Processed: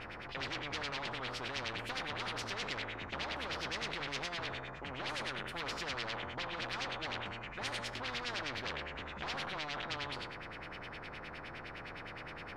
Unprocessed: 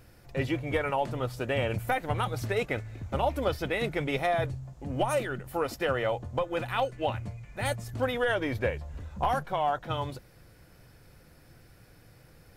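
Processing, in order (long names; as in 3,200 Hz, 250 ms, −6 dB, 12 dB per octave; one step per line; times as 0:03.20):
peak hold with a decay on every bin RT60 0.58 s
hard clipping −29.5 dBFS, distortion −7 dB
auto-filter low-pass sine 9.7 Hz 980–3,100 Hz
every bin compressed towards the loudest bin 4 to 1
level −3 dB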